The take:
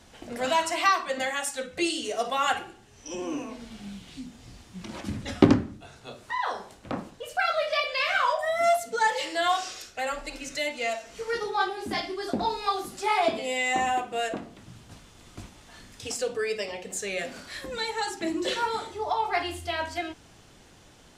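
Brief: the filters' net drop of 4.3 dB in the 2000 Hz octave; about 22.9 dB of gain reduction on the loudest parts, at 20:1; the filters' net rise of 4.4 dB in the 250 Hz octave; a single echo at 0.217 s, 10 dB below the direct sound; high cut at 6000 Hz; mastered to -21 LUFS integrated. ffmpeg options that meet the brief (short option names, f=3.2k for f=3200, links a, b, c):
-af "lowpass=6k,equalizer=f=250:t=o:g=5.5,equalizer=f=2k:t=o:g=-5.5,acompressor=threshold=-31dB:ratio=20,aecho=1:1:217:0.316,volume=15.5dB"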